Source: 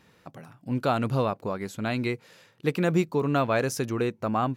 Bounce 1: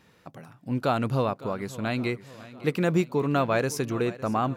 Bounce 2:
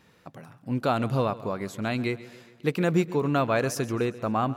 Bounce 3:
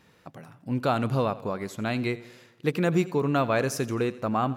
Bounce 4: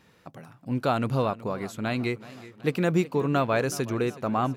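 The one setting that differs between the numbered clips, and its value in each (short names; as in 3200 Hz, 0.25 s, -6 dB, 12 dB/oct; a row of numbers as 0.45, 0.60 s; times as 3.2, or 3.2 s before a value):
warbling echo, time: 559, 136, 86, 373 ms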